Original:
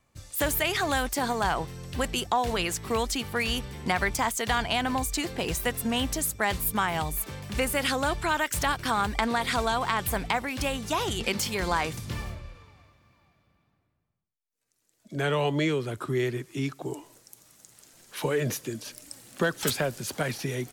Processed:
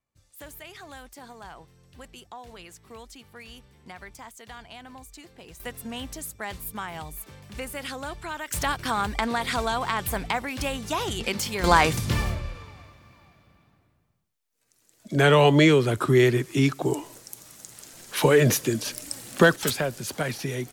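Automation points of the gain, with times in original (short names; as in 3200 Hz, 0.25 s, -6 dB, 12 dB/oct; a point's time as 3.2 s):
-17 dB
from 5.6 s -8 dB
from 8.48 s 0 dB
from 11.64 s +9 dB
from 19.56 s +1 dB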